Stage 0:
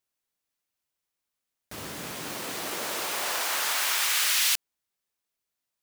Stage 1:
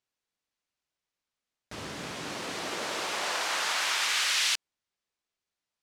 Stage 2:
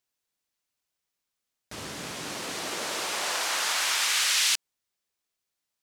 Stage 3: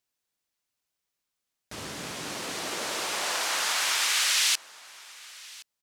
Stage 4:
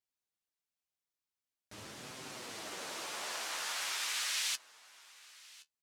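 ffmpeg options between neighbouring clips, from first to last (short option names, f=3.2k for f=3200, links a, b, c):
-af "lowpass=6.4k"
-af "highshelf=f=6.9k:g=10.5"
-af "aecho=1:1:1069:0.0841"
-af "flanger=delay=7.7:depth=5.5:regen=43:speed=0.45:shape=sinusoidal,volume=-7dB"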